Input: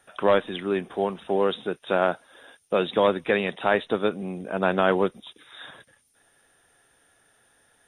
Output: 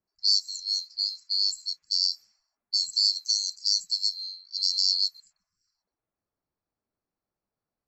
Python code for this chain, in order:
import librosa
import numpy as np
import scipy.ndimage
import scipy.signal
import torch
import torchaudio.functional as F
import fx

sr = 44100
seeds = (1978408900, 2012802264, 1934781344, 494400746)

y = fx.band_swap(x, sr, width_hz=4000)
y = fx.env_lowpass(y, sr, base_hz=580.0, full_db=-22.0)
y = F.gain(torch.from_numpy(y), -3.5).numpy()